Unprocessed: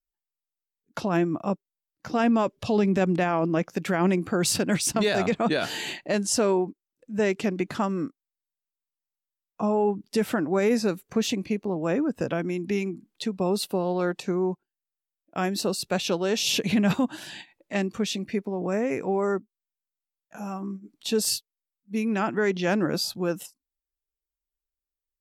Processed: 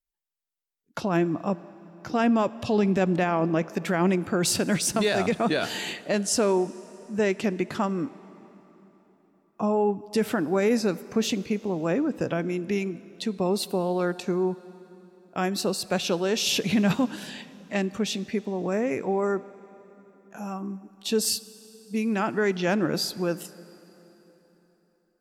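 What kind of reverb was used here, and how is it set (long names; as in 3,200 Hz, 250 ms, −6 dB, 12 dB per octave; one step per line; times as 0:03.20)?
dense smooth reverb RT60 3.9 s, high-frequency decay 0.8×, DRR 17.5 dB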